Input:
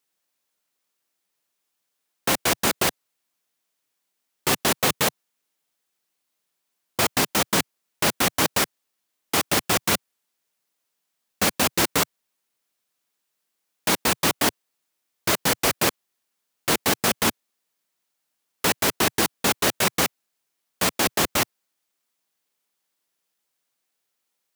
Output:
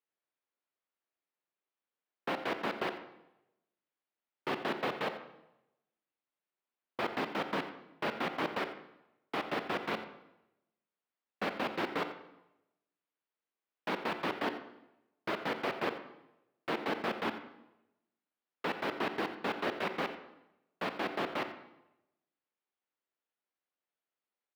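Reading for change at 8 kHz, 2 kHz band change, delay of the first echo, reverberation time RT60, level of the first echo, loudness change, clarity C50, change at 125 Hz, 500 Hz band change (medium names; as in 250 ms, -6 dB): -36.0 dB, -11.5 dB, 87 ms, 0.90 s, -14.5 dB, -14.5 dB, 9.0 dB, -16.5 dB, -9.0 dB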